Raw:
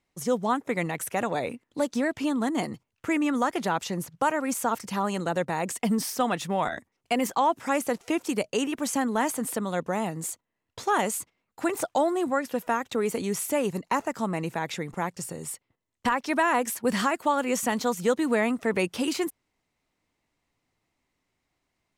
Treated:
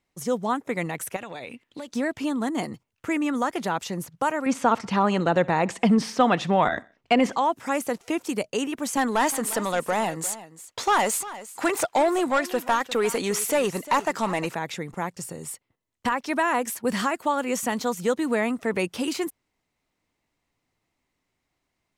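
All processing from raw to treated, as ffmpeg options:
-filter_complex "[0:a]asettb=1/sr,asplit=3[s0][s1][s2];[s0]atrim=end=1.164[s3];[s1]atrim=start=1.16:end=1.88,asetpts=PTS-STARTPTS,afade=t=in:d=0.004:c=qsin,afade=t=out:st=0.716:d=0.004:c=qsin,equalizer=f=2900:w=0.99:g=11,acompressor=threshold=0.0224:ratio=6:attack=3.2:release=140:knee=1:detection=peak[s4];[s2]atrim=start=1.876[s5];[s3][s4]acrossfade=d=0.004:c1=hsin:c2=qsin[s6];[s6][s5]acrossfade=d=0.004:c1=qsin:c2=hsin,asettb=1/sr,asplit=3[s7][s8][s9];[s7]atrim=end=4.464[s10];[s8]atrim=start=4.46:end=7.36,asetpts=PTS-STARTPTS,afade=t=in:d=0.004:c=qsin,afade=t=out:st=2.896:d=0.004:c=qsin,lowpass=4100,acontrast=63,aecho=1:1:63|126|189:0.0631|0.029|0.0134,atrim=end_sample=127890[s11];[s9]atrim=start=7.356[s12];[s10][s11]acrossfade=d=0.004:c1=hsin:c2=qsin[s13];[s13][s12]acrossfade=d=0.004:c1=qsin:c2=hsin,asettb=1/sr,asplit=3[s14][s15][s16];[s14]atrim=end=8.974[s17];[s15]atrim=start=8.97:end=14.55,asetpts=PTS-STARTPTS,afade=t=in:d=0.004:c=qsin,afade=t=out:st=5.576:d=0.004:c=qsin,asplit=2[s18][s19];[s19]highpass=f=720:p=1,volume=5.62,asoftclip=type=tanh:threshold=0.237[s20];[s18][s20]amix=inputs=2:normalize=0,lowpass=f=6800:p=1,volume=0.501,aecho=1:1:351:0.158,atrim=end_sample=246078[s21];[s16]atrim=start=14.546[s22];[s17][s21]acrossfade=d=0.004:c1=hsin:c2=qsin[s23];[s23][s22]acrossfade=d=0.004:c1=qsin:c2=hsin"

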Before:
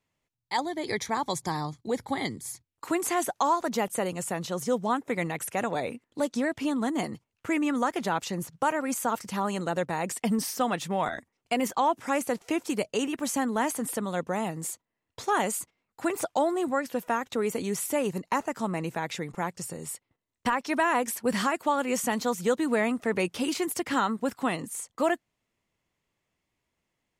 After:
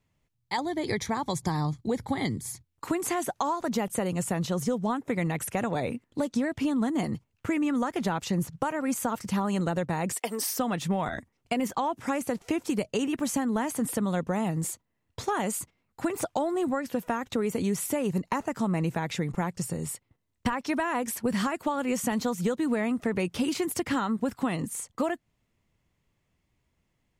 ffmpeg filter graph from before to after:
-filter_complex "[0:a]asettb=1/sr,asplit=3[s0][s1][s2];[s0]atrim=end=10.134[s3];[s1]atrim=start=10.13:end=10.59,asetpts=PTS-STARTPTS,afade=t=in:d=0.004:c=qsin,afade=t=out:st=0.456:d=0.004:c=qsin,highpass=f=370:w=0.5412,highpass=f=370:w=1.3066,highshelf=f=10000:g=8.5[s4];[s2]atrim=start=10.586[s5];[s3][s4]acrossfade=d=0.004:c1=hsin:c2=qsin[s6];[s6][s5]acrossfade=d=0.004:c1=qsin:c2=hsin,bass=f=250:g=4,treble=f=4000:g=-1,acompressor=threshold=0.0447:ratio=6,lowshelf=f=170:g=8,volume=1.19"

